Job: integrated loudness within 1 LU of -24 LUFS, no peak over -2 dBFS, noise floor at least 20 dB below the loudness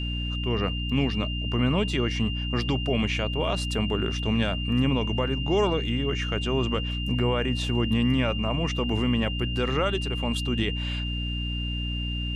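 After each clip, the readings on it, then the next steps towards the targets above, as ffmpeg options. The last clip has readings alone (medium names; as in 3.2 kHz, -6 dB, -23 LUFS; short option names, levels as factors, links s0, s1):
hum 60 Hz; highest harmonic 300 Hz; hum level -28 dBFS; steady tone 2.8 kHz; tone level -33 dBFS; loudness -26.5 LUFS; peak level -12.5 dBFS; loudness target -24.0 LUFS
-> -af "bandreject=f=60:t=h:w=4,bandreject=f=120:t=h:w=4,bandreject=f=180:t=h:w=4,bandreject=f=240:t=h:w=4,bandreject=f=300:t=h:w=4"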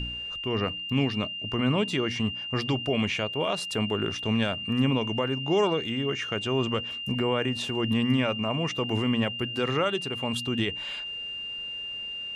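hum not found; steady tone 2.8 kHz; tone level -33 dBFS
-> -af "bandreject=f=2800:w=30"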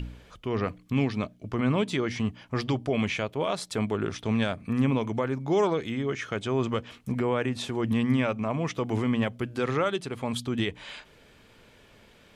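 steady tone not found; loudness -28.5 LUFS; peak level -14.5 dBFS; loudness target -24.0 LUFS
-> -af "volume=1.68"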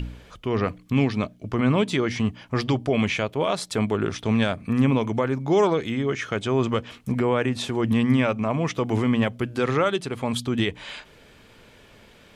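loudness -24.0 LUFS; peak level -10.0 dBFS; noise floor -52 dBFS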